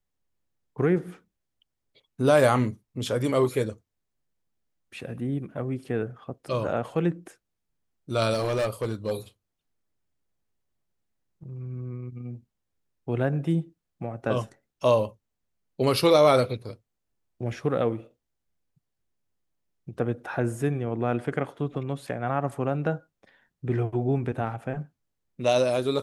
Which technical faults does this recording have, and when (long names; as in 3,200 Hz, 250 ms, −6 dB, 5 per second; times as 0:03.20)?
0:08.33–0:09.12: clipping −22 dBFS